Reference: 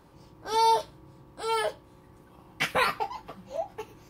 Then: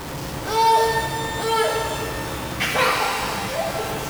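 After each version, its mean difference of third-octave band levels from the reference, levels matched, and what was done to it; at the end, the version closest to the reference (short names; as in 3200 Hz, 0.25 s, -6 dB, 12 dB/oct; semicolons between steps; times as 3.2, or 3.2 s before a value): 15.5 dB: zero-crossing step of -29.5 dBFS; shimmer reverb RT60 2.3 s, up +12 st, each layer -8 dB, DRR -0.5 dB; gain +2 dB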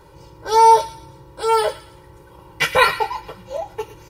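3.0 dB: comb 2.1 ms, depth 94%; on a send: thin delay 0.112 s, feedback 38%, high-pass 1600 Hz, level -12.5 dB; on the sum: gain +6.5 dB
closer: second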